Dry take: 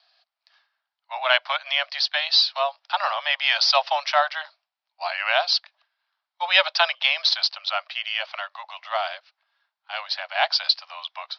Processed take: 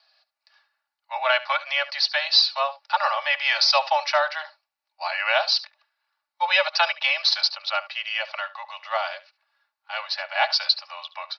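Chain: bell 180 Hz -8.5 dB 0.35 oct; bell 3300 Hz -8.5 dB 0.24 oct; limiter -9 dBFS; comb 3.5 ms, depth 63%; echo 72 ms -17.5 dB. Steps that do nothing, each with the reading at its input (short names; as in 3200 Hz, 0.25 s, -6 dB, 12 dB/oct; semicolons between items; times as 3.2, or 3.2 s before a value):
bell 180 Hz: input band starts at 480 Hz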